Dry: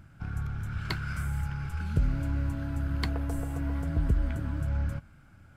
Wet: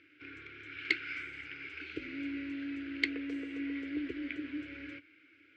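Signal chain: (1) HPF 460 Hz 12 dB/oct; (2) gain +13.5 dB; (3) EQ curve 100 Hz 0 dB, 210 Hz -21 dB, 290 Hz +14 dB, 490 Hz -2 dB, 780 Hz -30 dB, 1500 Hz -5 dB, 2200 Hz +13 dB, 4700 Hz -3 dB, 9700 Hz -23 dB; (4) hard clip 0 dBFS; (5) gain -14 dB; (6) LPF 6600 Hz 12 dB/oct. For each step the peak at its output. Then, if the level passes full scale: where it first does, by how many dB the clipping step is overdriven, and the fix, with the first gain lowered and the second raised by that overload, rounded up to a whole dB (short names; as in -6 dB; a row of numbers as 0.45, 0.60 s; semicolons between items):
-17.5, -4.0, +3.0, 0.0, -14.0, -13.5 dBFS; step 3, 3.0 dB; step 2 +10.5 dB, step 5 -11 dB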